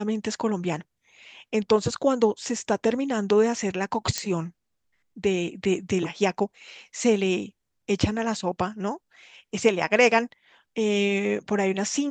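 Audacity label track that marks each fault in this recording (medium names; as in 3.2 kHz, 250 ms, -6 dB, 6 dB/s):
4.180000	4.180000	pop -11 dBFS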